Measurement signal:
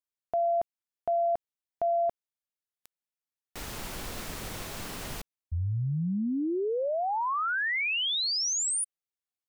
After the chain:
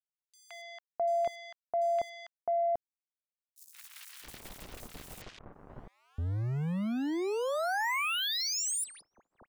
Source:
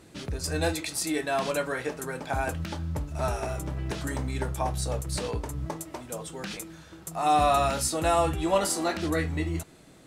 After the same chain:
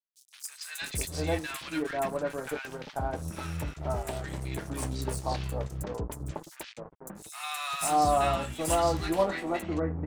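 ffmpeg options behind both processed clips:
-filter_complex "[0:a]agate=range=-33dB:threshold=-38dB:ratio=3:release=33:detection=rms,aeval=exprs='sgn(val(0))*max(abs(val(0))-0.0119,0)':c=same,acrossover=split=1300|5700[a][b][c];[b]adelay=170[d];[a]adelay=660[e];[e][d][c]amix=inputs=3:normalize=0"

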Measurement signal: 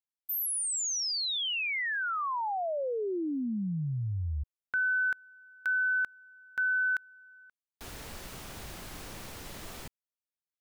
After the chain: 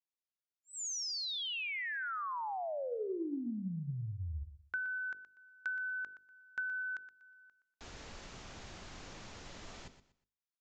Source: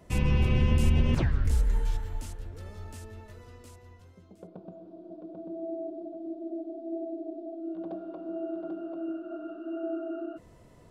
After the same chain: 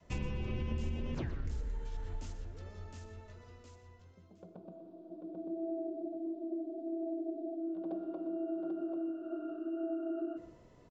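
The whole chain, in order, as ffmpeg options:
-af "bandreject=f=50:t=h:w=6,bandreject=f=100:t=h:w=6,bandreject=f=150:t=h:w=6,bandreject=f=200:t=h:w=6,bandreject=f=250:t=h:w=6,bandreject=f=300:t=h:w=6,bandreject=f=350:t=h:w=6,bandreject=f=400:t=h:w=6,bandreject=f=450:t=h:w=6,bandreject=f=500:t=h:w=6,adynamicequalizer=threshold=0.00501:dfrequency=350:dqfactor=1.1:tfrequency=350:tqfactor=1.1:attack=5:release=100:ratio=0.375:range=3:mode=boostabove:tftype=bell,acompressor=threshold=-35dB:ratio=4:attack=75:release=69:knee=1:detection=peak,aecho=1:1:121|242|363:0.237|0.0617|0.016,aresample=16000,aresample=44100,volume=-5.5dB"

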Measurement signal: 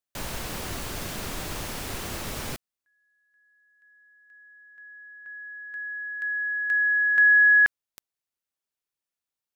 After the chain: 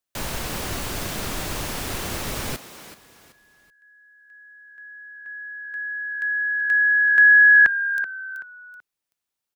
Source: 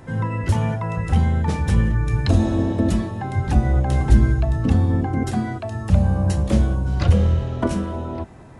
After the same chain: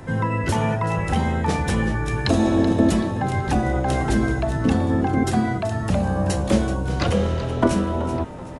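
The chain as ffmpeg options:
-filter_complex "[0:a]acrossover=split=210[a][b];[a]acompressor=threshold=-29dB:ratio=6:release=169[c];[b]asplit=4[d][e][f][g];[e]adelay=380,afreqshift=-70,volume=-12dB[h];[f]adelay=760,afreqshift=-140,volume=-21.6dB[i];[g]adelay=1140,afreqshift=-210,volume=-31.3dB[j];[d][h][i][j]amix=inputs=4:normalize=0[k];[c][k]amix=inputs=2:normalize=0,volume=4.5dB"

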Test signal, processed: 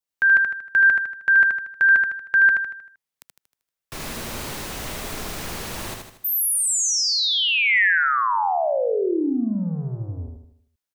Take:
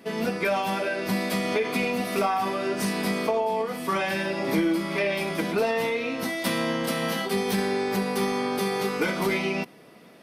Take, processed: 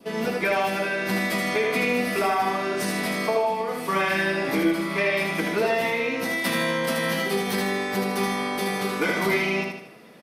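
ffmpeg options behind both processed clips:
-filter_complex "[0:a]adynamicequalizer=threshold=0.0141:dfrequency=1900:dqfactor=2.5:tfrequency=1900:tqfactor=2.5:attack=5:release=100:ratio=0.375:range=2.5:mode=boostabove:tftype=bell,acrossover=split=200[a][b];[a]asoftclip=type=tanh:threshold=-32.5dB[c];[c][b]amix=inputs=2:normalize=0,aecho=1:1:78|156|234|312|390|468:0.631|0.29|0.134|0.0614|0.0283|0.013"

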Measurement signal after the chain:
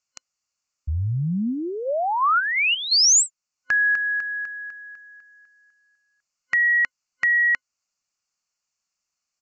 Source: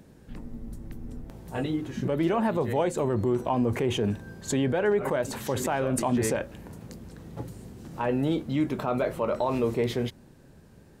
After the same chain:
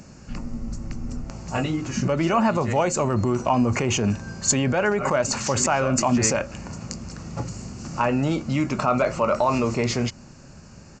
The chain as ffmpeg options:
-filter_complex "[0:a]crystalizer=i=3.5:c=0,asplit=2[a][b];[b]acompressor=threshold=-30dB:ratio=6,volume=-2dB[c];[a][c]amix=inputs=2:normalize=0,superequalizer=6b=0.631:7b=0.501:10b=1.58:11b=0.708:13b=0.282,aresample=16000,aresample=44100,volume=3dB"

